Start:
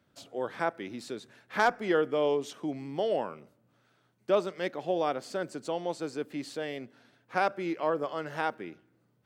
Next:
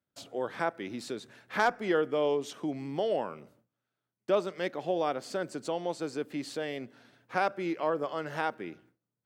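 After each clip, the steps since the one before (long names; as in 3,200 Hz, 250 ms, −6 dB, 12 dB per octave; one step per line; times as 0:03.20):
noise gate with hold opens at −55 dBFS
in parallel at −2.5 dB: downward compressor, threshold −36 dBFS, peak gain reduction 16 dB
on the sum: level −2.5 dB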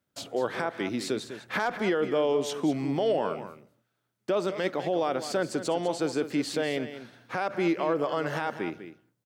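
brickwall limiter −25.5 dBFS, peak gain reduction 11 dB
on a send: single-tap delay 200 ms −11.5 dB
on the sum: level +7.5 dB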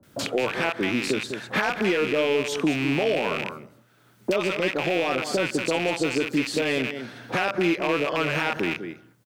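loose part that buzzes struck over −43 dBFS, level −22 dBFS
multiband delay without the direct sound lows, highs 30 ms, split 740 Hz
multiband upward and downward compressor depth 70%
level +4 dB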